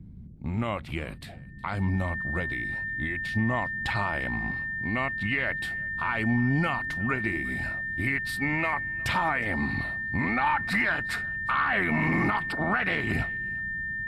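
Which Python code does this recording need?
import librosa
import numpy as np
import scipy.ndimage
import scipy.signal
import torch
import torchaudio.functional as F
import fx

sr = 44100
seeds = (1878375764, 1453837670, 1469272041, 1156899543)

y = fx.notch(x, sr, hz=1800.0, q=30.0)
y = fx.noise_reduce(y, sr, print_start_s=0.0, print_end_s=0.5, reduce_db=30.0)
y = fx.fix_echo_inverse(y, sr, delay_ms=364, level_db=-23.5)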